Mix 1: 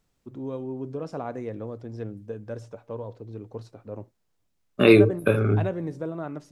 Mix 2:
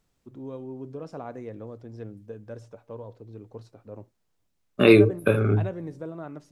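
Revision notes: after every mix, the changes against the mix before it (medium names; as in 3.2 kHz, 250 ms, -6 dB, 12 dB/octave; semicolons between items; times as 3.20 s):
first voice -4.5 dB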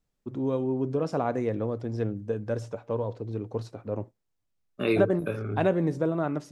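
first voice +10.0 dB; second voice -10.5 dB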